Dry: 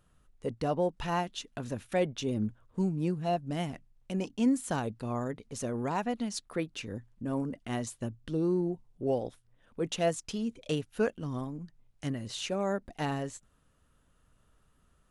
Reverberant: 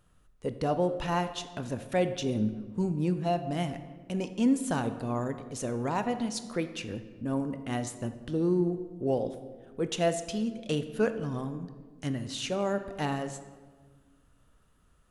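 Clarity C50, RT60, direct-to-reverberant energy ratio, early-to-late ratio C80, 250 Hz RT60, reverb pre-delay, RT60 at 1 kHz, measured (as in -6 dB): 11.0 dB, 1.5 s, 9.5 dB, 12.5 dB, 1.9 s, 18 ms, 1.4 s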